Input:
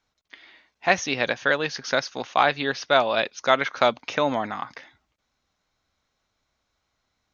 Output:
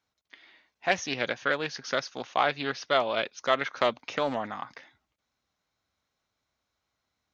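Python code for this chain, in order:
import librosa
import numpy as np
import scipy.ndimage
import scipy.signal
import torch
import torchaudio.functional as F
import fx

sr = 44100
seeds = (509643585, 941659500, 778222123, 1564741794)

y = scipy.signal.sosfilt(scipy.signal.butter(2, 58.0, 'highpass', fs=sr, output='sos'), x)
y = fx.doppler_dist(y, sr, depth_ms=0.19)
y = y * 10.0 ** (-5.5 / 20.0)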